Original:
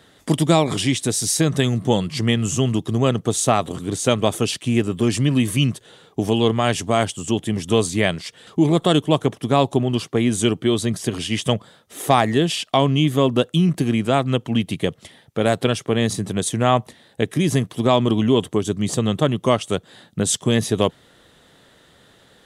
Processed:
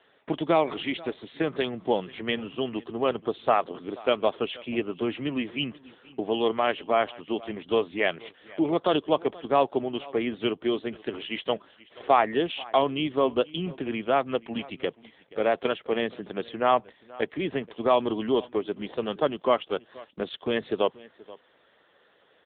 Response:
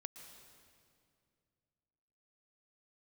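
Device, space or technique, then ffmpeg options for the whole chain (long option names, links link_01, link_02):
satellite phone: -af "highpass=390,lowpass=3300,aecho=1:1:480:0.0891,volume=-2.5dB" -ar 8000 -c:a libopencore_amrnb -b:a 6700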